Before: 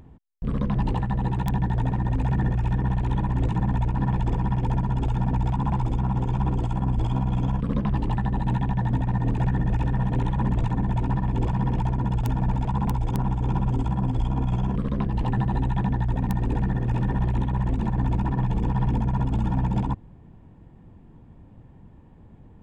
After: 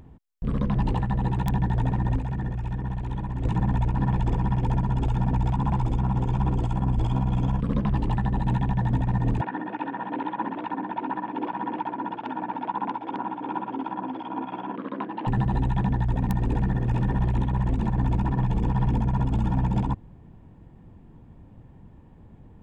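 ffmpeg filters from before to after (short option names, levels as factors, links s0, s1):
-filter_complex "[0:a]asettb=1/sr,asplit=3[s0][s1][s2];[s0]atrim=end=9.414[s3];[s1]atrim=start=9.41:end=15.27,asetpts=PTS-STARTPTS,afade=t=in:d=0.004:c=qsin,afade=t=out:st=5.856:d=0.004:c=qsin,highpass=f=280:w=0.5412,highpass=f=280:w=1.3066,equalizer=f=300:t=q:w=4:g=7,equalizer=f=420:t=q:w=4:g=-5,equalizer=f=940:t=q:w=4:g=5,equalizer=f=1500:t=q:w=4:g=5,lowpass=f=3400:w=0.5412,lowpass=f=3400:w=1.3066[s4];[s2]atrim=start=15.266[s5];[s3][s4]acrossfade=d=0.004:c1=hsin:c2=qsin[s6];[s6][s5]acrossfade=d=0.004:c1=qsin:c2=hsin,asplit=3[s7][s8][s9];[s7]atrim=end=2.192[s10];[s8]atrim=start=2.188:end=3.452,asetpts=PTS-STARTPTS,volume=0.501[s11];[s9]atrim=start=3.448[s12];[s10][s11]acrossfade=d=0.004:c1=hsin:c2=hsin[s13];[s13][s12]acrossfade=d=0.004:c1=hsin:c2=hsin"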